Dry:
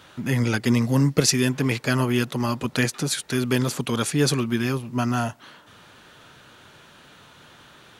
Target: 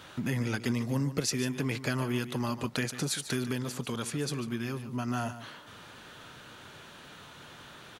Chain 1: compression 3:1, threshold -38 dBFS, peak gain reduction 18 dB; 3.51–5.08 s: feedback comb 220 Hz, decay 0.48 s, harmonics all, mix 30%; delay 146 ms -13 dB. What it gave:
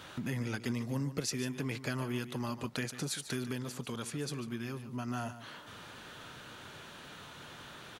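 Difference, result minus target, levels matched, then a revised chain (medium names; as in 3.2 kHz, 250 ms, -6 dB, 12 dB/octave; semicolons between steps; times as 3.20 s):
compression: peak gain reduction +5 dB
compression 3:1, threshold -30.5 dBFS, peak gain reduction 13 dB; 3.51–5.08 s: feedback comb 220 Hz, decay 0.48 s, harmonics all, mix 30%; delay 146 ms -13 dB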